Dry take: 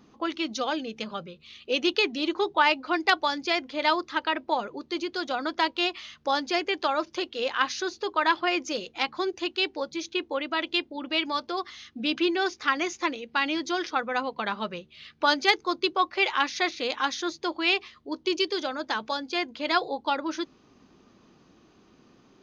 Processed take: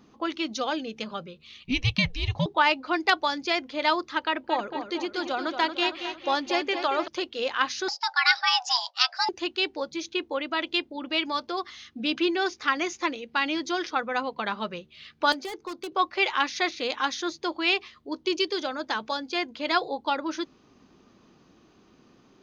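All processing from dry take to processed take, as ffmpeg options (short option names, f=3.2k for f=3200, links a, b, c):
-filter_complex "[0:a]asettb=1/sr,asplit=3[a][b][c];[a]atrim=end=1.634[d];[b]atrim=start=1.63:end=2.46,asetpts=PTS-STARTPTS,afade=t=in:d=0.004:c=qsin,afade=t=out:st=0.826:d=0.004:c=qsin,equalizer=f=1.7k:t=o:w=0.25:g=-11,afreqshift=-240[e];[c]atrim=start=2.456[f];[d][e]acrossfade=d=0.004:c1=hsin:c2=qsin[g];[g][f]acrossfade=d=0.004:c1=qsin:c2=hsin,asettb=1/sr,asplit=3[h][i][j];[h]atrim=end=4.214[k];[i]atrim=start=4.21:end=7.08,asetpts=PTS-STARTPTS,afade=t=in:d=0.004:c=qsin,afade=t=out:st=2.866:d=0.004:c=qsin,equalizer=f=5k:w=6:g=-4,asplit=2[l][m];[m]adelay=228,lowpass=f=5k:p=1,volume=-8dB,asplit=2[n][o];[o]adelay=228,lowpass=f=5k:p=1,volume=0.55,asplit=2[p][q];[q]adelay=228,lowpass=f=5k:p=1,volume=0.55,asplit=2[r][s];[s]adelay=228,lowpass=f=5k:p=1,volume=0.55,asplit=2[t][u];[u]adelay=228,lowpass=f=5k:p=1,volume=0.55,asplit=2[v][w];[w]adelay=228,lowpass=f=5k:p=1,volume=0.55,asplit=2[x][y];[y]adelay=228,lowpass=f=5k:p=1,volume=0.55[z];[l][n][p][r][t][v][x][z]amix=inputs=8:normalize=0,atrim=end_sample=126567[aa];[j]atrim=start=7.076[ab];[k][aa]acrossfade=d=0.004:c1=hsin:c2=qsin[ac];[ac][ab]acrossfade=d=0.004:c1=qsin:c2=hsin,asettb=1/sr,asplit=3[ad][ae][af];[ad]atrim=end=7.884[ag];[ae]atrim=start=7.88:end=9.29,asetpts=PTS-STARTPTS,afade=t=in:d=0.004:c=qsin,afade=t=out:st=1.406:d=0.004:c=qsin,agate=range=-10dB:threshold=-48dB:ratio=16:release=100:detection=peak,afreqshift=480,lowpass=f=5.1k:t=q:w=5.1[ah];[af]atrim=start=9.286[ai];[ag][ah]acrossfade=d=0.004:c1=hsin:c2=qsin[aj];[aj][ai]acrossfade=d=0.004:c1=qsin:c2=hsin,asettb=1/sr,asplit=3[ak][al][am];[ak]atrim=end=15.324[an];[al]atrim=start=15.32:end=15.92,asetpts=PTS-STARTPTS,afade=t=in:d=0.004:c=qsin,afade=t=out:st=0.596:d=0.004:c=qsin,asoftclip=type=hard:threshold=-26dB,acrossover=split=190|460|1300[ao][ap][aq][ar];[ao]acompressor=threshold=-60dB:ratio=3[as];[ap]acompressor=threshold=-38dB:ratio=3[at];[aq]acompressor=threshold=-41dB:ratio=3[au];[ar]acompressor=threshold=-43dB:ratio=3[av];[as][at][au][av]amix=inputs=4:normalize=0[aw];[am]atrim=start=15.916[ax];[an][aw]acrossfade=d=0.004:c1=hsin:c2=qsin[ay];[ay][ax]acrossfade=d=0.004:c1=qsin:c2=hsin"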